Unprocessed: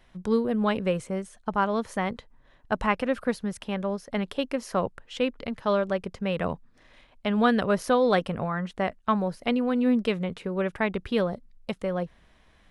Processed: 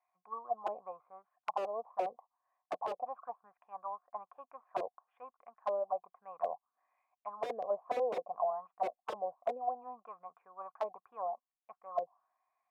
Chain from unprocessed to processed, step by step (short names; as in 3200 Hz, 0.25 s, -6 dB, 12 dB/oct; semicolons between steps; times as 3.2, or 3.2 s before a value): vocal tract filter a; wrapped overs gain 28.5 dB; auto-wah 500–2200 Hz, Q 4.1, down, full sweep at -34.5 dBFS; gain +10.5 dB